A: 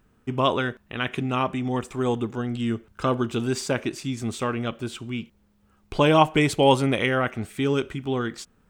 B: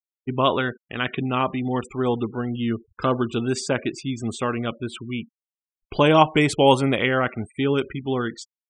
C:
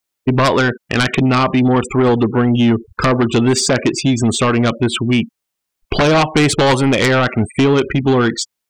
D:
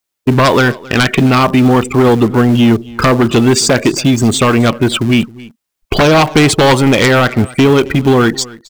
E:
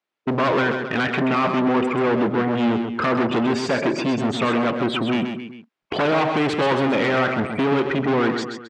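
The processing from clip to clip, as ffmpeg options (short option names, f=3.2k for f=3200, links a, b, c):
-af "afftfilt=real='re*gte(hypot(re,im),0.0141)':imag='im*gte(hypot(re,im),0.0141)':win_size=1024:overlap=0.75,lowshelf=f=65:g=-7,volume=2dB"
-af "acompressor=threshold=-27dB:ratio=2.5,aeval=exprs='0.224*sin(PI/2*2.82*val(0)/0.224)':c=same,volume=5dB"
-filter_complex "[0:a]aecho=1:1:269:0.0944,asplit=2[a][b];[b]acrusher=bits=4:dc=4:mix=0:aa=0.000001,volume=-9dB[c];[a][c]amix=inputs=2:normalize=0,volume=1.5dB"
-af "asoftclip=type=tanh:threshold=-17dB,highpass=190,lowpass=2.6k,aecho=1:1:130:0.447"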